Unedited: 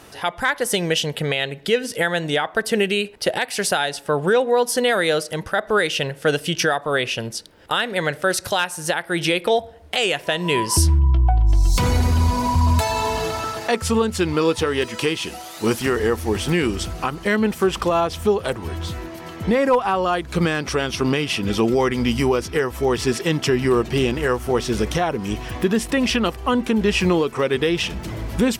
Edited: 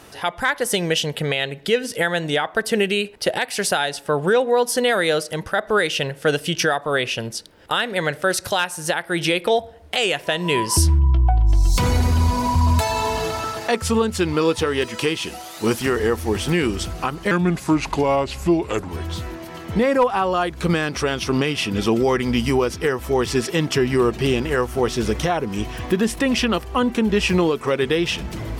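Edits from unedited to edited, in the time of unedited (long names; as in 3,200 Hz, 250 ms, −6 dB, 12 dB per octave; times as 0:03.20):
0:17.31–0:18.60: play speed 82%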